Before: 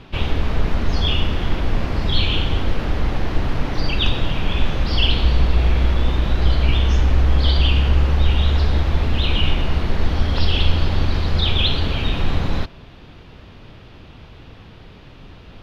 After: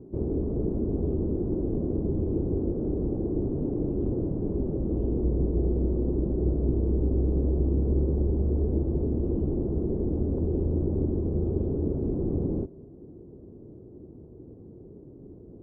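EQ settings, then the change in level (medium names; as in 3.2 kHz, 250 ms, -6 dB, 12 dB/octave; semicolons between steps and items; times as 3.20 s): high-pass 120 Hz 6 dB/octave; four-pole ladder low-pass 430 Hz, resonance 55%; +6.5 dB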